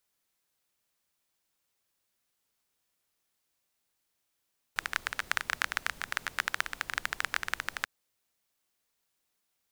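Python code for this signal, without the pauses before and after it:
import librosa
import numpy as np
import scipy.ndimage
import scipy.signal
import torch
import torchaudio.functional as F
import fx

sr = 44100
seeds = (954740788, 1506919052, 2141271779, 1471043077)

y = fx.rain(sr, seeds[0], length_s=3.09, drops_per_s=16.0, hz=1600.0, bed_db=-17.0)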